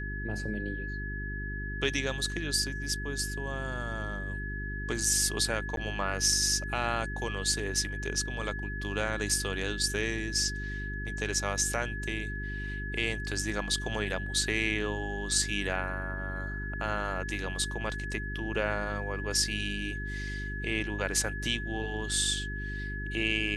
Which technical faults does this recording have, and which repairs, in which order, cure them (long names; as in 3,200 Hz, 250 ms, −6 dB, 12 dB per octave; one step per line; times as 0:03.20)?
mains hum 50 Hz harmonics 8 −37 dBFS
whistle 1,700 Hz −38 dBFS
0:05.76–0:05.77: drop-out 12 ms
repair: notch filter 1,700 Hz, Q 30
hum removal 50 Hz, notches 8
repair the gap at 0:05.76, 12 ms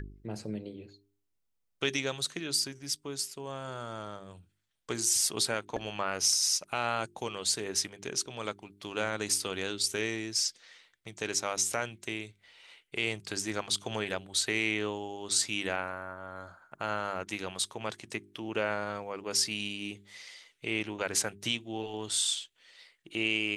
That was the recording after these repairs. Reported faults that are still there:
none of them is left